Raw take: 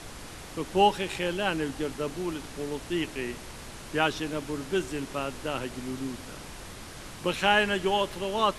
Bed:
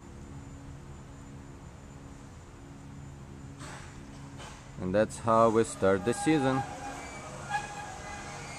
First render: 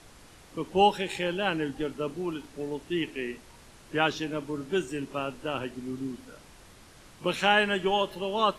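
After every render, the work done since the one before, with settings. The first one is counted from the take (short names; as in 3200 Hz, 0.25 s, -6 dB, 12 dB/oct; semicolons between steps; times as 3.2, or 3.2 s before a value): noise print and reduce 10 dB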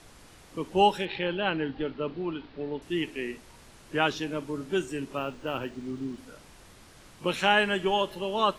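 1.05–2.82 steep low-pass 4500 Hz 48 dB/oct; 5.17–6.18 decimation joined by straight lines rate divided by 3×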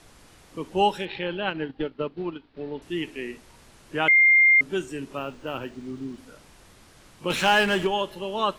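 1.47–2.57 transient shaper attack +5 dB, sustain -11 dB; 4.08–4.61 bleep 2110 Hz -13 dBFS; 7.3–7.87 power-law curve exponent 0.7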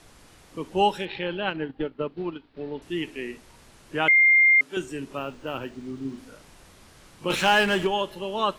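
1.56–2.09 bell 5400 Hz -6 dB 1.6 oct; 4.11–4.77 HPF 750 Hz 6 dB/oct; 6.01–7.35 doubler 37 ms -6.5 dB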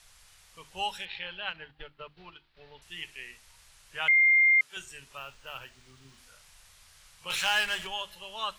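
passive tone stack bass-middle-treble 10-0-10; notches 50/100/150/200/250/300/350 Hz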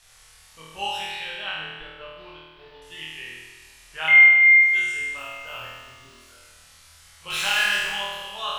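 flutter echo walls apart 4.3 m, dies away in 1.3 s; plate-style reverb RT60 2.8 s, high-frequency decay 0.95×, pre-delay 0 ms, DRR 15 dB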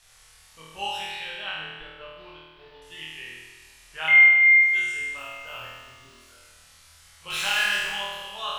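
gain -2 dB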